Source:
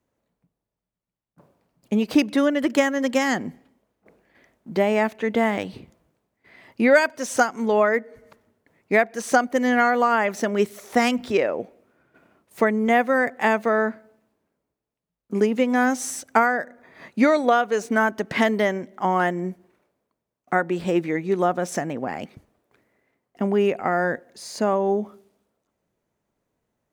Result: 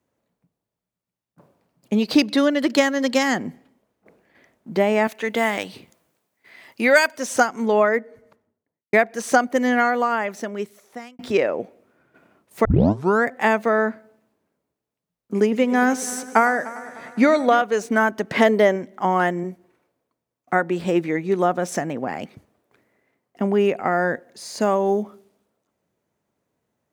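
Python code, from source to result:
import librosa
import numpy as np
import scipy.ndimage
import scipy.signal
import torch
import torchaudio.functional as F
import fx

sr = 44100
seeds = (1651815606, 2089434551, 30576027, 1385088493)

y = fx.peak_eq(x, sr, hz=4300.0, db=11.5, octaves=0.5, at=(1.94, 3.23))
y = fx.tilt_eq(y, sr, slope=2.5, at=(5.07, 7.18))
y = fx.studio_fade_out(y, sr, start_s=7.79, length_s=1.14)
y = fx.echo_heads(y, sr, ms=100, heads='first and third', feedback_pct=59, wet_db=-19, at=(15.42, 17.62))
y = fx.peak_eq(y, sr, hz=510.0, db=7.5, octaves=0.77, at=(18.33, 18.76))
y = fx.notch_comb(y, sr, f0_hz=200.0, at=(19.43, 20.53))
y = fx.high_shelf(y, sr, hz=4400.0, db=10.5, at=(24.6, 25.03))
y = fx.edit(y, sr, fx.fade_out_span(start_s=9.56, length_s=1.63),
    fx.tape_start(start_s=12.65, length_s=0.61), tone=tone)
y = scipy.signal.sosfilt(scipy.signal.butter(2, 75.0, 'highpass', fs=sr, output='sos'), y)
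y = y * 10.0 ** (1.5 / 20.0)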